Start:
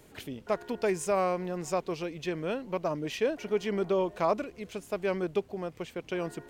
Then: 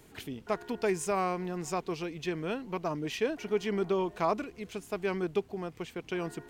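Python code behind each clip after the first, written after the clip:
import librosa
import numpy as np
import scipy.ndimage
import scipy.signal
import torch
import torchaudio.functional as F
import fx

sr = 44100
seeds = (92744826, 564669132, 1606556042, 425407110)

y = fx.peak_eq(x, sr, hz=560.0, db=-10.0, octaves=0.24)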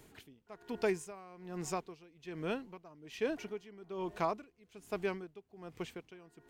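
y = x * 10.0 ** (-21 * (0.5 - 0.5 * np.cos(2.0 * np.pi * 1.2 * np.arange(len(x)) / sr)) / 20.0)
y = F.gain(torch.from_numpy(y), -2.0).numpy()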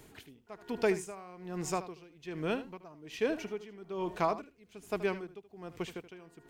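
y = x + 10.0 ** (-14.0 / 20.0) * np.pad(x, (int(77 * sr / 1000.0), 0))[:len(x)]
y = F.gain(torch.from_numpy(y), 3.5).numpy()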